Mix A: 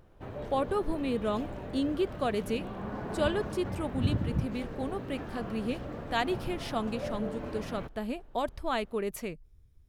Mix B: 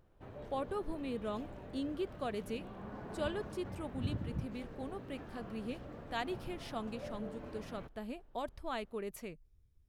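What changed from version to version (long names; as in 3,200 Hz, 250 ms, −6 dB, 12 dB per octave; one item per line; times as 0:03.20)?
speech −8.5 dB
background −9.0 dB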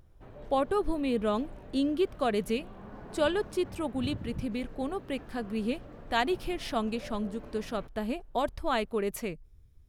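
speech +10.5 dB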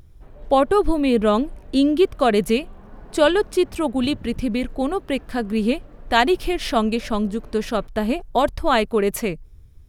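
speech +11.0 dB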